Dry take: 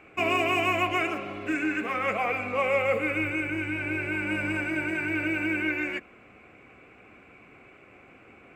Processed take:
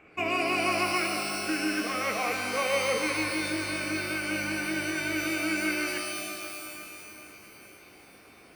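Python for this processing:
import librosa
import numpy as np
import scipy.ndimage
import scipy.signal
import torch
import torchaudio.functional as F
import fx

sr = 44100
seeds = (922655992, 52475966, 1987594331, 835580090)

p1 = x + fx.echo_feedback(x, sr, ms=492, feedback_pct=58, wet_db=-17.0, dry=0)
p2 = fx.rev_shimmer(p1, sr, seeds[0], rt60_s=2.2, semitones=12, shimmer_db=-2, drr_db=5.5)
y = F.gain(torch.from_numpy(p2), -3.5).numpy()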